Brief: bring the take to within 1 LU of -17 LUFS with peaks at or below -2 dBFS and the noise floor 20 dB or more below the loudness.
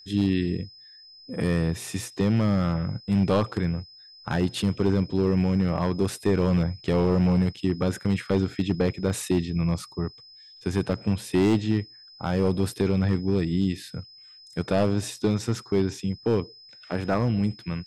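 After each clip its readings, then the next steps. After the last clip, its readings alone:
clipped samples 1.6%; clipping level -15.0 dBFS; steady tone 5.1 kHz; tone level -47 dBFS; loudness -25.5 LUFS; peak level -15.0 dBFS; loudness target -17.0 LUFS
-> clip repair -15 dBFS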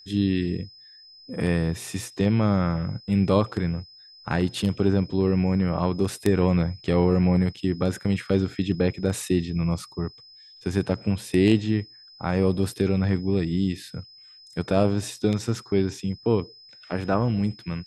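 clipped samples 0.0%; steady tone 5.1 kHz; tone level -47 dBFS
-> band-stop 5.1 kHz, Q 30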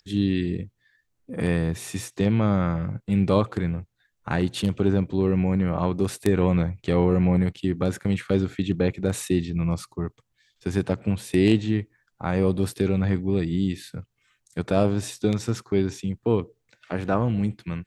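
steady tone not found; loudness -25.0 LUFS; peak level -6.0 dBFS; loudness target -17.0 LUFS
-> trim +8 dB; peak limiter -2 dBFS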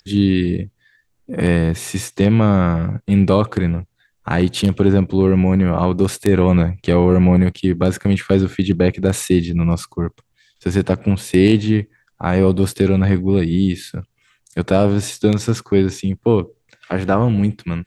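loudness -17.0 LUFS; peak level -2.0 dBFS; noise floor -66 dBFS

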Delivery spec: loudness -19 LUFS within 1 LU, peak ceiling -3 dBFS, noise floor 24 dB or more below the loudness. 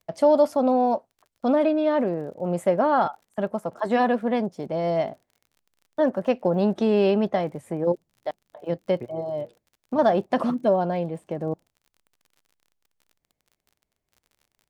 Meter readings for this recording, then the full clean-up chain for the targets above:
tick rate 41 per s; loudness -24.0 LUFS; peak level -8.5 dBFS; loudness target -19.0 LUFS
-> de-click; trim +5 dB

